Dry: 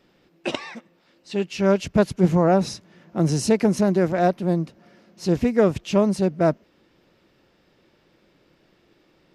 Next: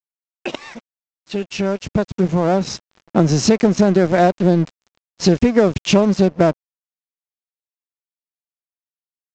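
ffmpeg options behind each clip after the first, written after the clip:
ffmpeg -i in.wav -af "acompressor=threshold=-26dB:ratio=6,aresample=16000,aeval=exprs='sgn(val(0))*max(abs(val(0))-0.00631,0)':channel_layout=same,aresample=44100,dynaudnorm=framelen=260:gausssize=17:maxgain=11dB,volume=5.5dB" out.wav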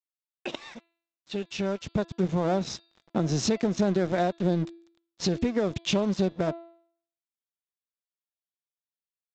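ffmpeg -i in.wav -af "equalizer=frequency=3600:width_type=o:width=0.23:gain=7,bandreject=frequency=336.4:width_type=h:width=4,bandreject=frequency=672.8:width_type=h:width=4,bandreject=frequency=1009.2:width_type=h:width=4,bandreject=frequency=1345.6:width_type=h:width=4,bandreject=frequency=1682:width_type=h:width=4,bandreject=frequency=2018.4:width_type=h:width=4,bandreject=frequency=2354.8:width_type=h:width=4,bandreject=frequency=2691.2:width_type=h:width=4,bandreject=frequency=3027.6:width_type=h:width=4,bandreject=frequency=3364:width_type=h:width=4,bandreject=frequency=3700.4:width_type=h:width=4,bandreject=frequency=4036.8:width_type=h:width=4,bandreject=frequency=4373.2:width_type=h:width=4,bandreject=frequency=4709.6:width_type=h:width=4,alimiter=limit=-6.5dB:level=0:latency=1:release=271,volume=-9dB" out.wav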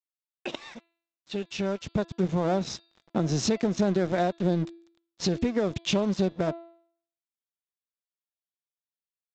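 ffmpeg -i in.wav -af anull out.wav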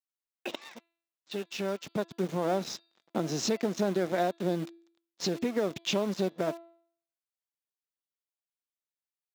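ffmpeg -i in.wav -filter_complex "[0:a]asplit=2[link_01][link_02];[link_02]acrusher=bits=5:mix=0:aa=0.000001,volume=-7.5dB[link_03];[link_01][link_03]amix=inputs=2:normalize=0,highpass=230,volume=-5dB" out.wav

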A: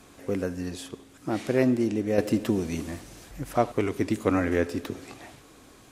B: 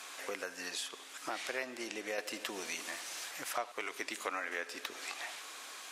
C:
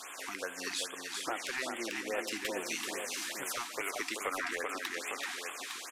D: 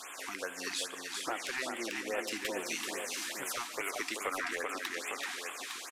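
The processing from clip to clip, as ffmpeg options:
ffmpeg -i in.wav -af "highpass=820,equalizer=frequency=3300:width=0.3:gain=6.5,acompressor=threshold=-43dB:ratio=3,volume=4dB" out.wav
ffmpeg -i in.wav -af "aecho=1:1:384|858:0.562|0.376,aeval=exprs='0.112*sin(PI/2*1.78*val(0)/0.112)':channel_layout=same,afftfilt=real='re*(1-between(b*sr/1024,480*pow(5100/480,0.5+0.5*sin(2*PI*2.4*pts/sr))/1.41,480*pow(5100/480,0.5+0.5*sin(2*PI*2.4*pts/sr))*1.41))':imag='im*(1-between(b*sr/1024,480*pow(5100/480,0.5+0.5*sin(2*PI*2.4*pts/sr))/1.41,480*pow(5100/480,0.5+0.5*sin(2*PI*2.4*pts/sr))*1.41))':win_size=1024:overlap=0.75,volume=-5.5dB" out.wav
ffmpeg -i in.wav -af "aecho=1:1:143:0.0668" out.wav

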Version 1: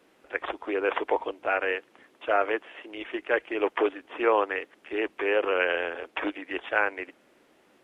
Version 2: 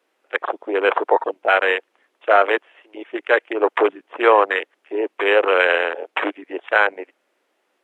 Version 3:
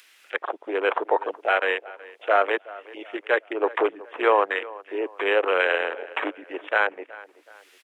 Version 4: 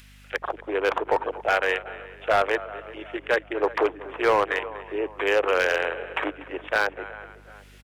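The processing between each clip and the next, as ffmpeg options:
ffmpeg -i in.wav -af "afwtdn=0.0282,highpass=430,alimiter=level_in=12dB:limit=-1dB:release=50:level=0:latency=1,volume=-1dB" out.wav
ffmpeg -i in.wav -filter_complex "[0:a]acrossover=split=1700[link_01][link_02];[link_02]acompressor=mode=upward:threshold=-30dB:ratio=2.5[link_03];[link_01][link_03]amix=inputs=2:normalize=0,asplit=2[link_04][link_05];[link_05]adelay=373,lowpass=frequency=2800:poles=1,volume=-19dB,asplit=2[link_06][link_07];[link_07]adelay=373,lowpass=frequency=2800:poles=1,volume=0.42,asplit=2[link_08][link_09];[link_09]adelay=373,lowpass=frequency=2800:poles=1,volume=0.42[link_10];[link_04][link_06][link_08][link_10]amix=inputs=4:normalize=0,volume=-5.5dB" out.wav
ffmpeg -i in.wav -filter_complex "[0:a]asplit=4[link_01][link_02][link_03][link_04];[link_02]adelay=241,afreqshift=-30,volume=-18dB[link_05];[link_03]adelay=482,afreqshift=-60,volume=-25.7dB[link_06];[link_04]adelay=723,afreqshift=-90,volume=-33.5dB[link_07];[link_01][link_05][link_06][link_07]amix=inputs=4:normalize=0,aeval=exprs='val(0)+0.00316*(sin(2*PI*50*n/s)+sin(2*PI*2*50*n/s)/2+sin(2*PI*3*50*n/s)/3+sin(2*PI*4*50*n/s)/4+sin(2*PI*5*50*n/s)/5)':channel_layout=same,asoftclip=type=hard:threshold=-14dB" out.wav

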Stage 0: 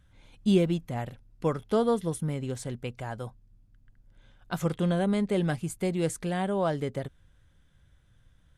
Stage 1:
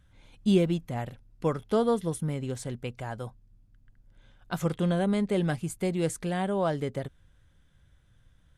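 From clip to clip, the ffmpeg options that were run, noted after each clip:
ffmpeg -i in.wav -af anull out.wav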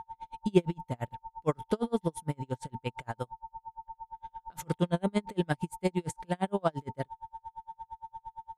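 ffmpeg -i in.wav -af "aeval=exprs='val(0)+0.0112*sin(2*PI*900*n/s)':channel_layout=same,aeval=exprs='val(0)*pow(10,-40*(0.5-0.5*cos(2*PI*8.7*n/s))/20)':channel_layout=same,volume=3.5dB" out.wav

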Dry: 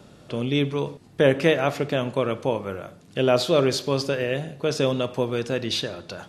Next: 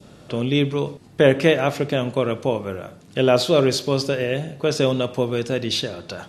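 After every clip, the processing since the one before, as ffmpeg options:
ffmpeg -i in.wav -af "adynamicequalizer=threshold=0.0158:dfrequency=1200:dqfactor=0.71:tfrequency=1200:tqfactor=0.71:attack=5:release=100:ratio=0.375:range=2:mode=cutabove:tftype=bell,volume=3.5dB" out.wav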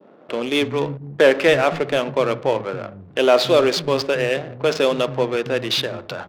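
ffmpeg -i in.wav -filter_complex "[0:a]adynamicsmooth=sensitivity=7:basefreq=520,asplit=2[link_01][link_02];[link_02]highpass=frequency=720:poles=1,volume=12dB,asoftclip=type=tanh:threshold=-1dB[link_03];[link_01][link_03]amix=inputs=2:normalize=0,lowpass=frequency=2800:poles=1,volume=-6dB,acrossover=split=200[link_04][link_05];[link_04]adelay=280[link_06];[link_06][link_05]amix=inputs=2:normalize=0" out.wav

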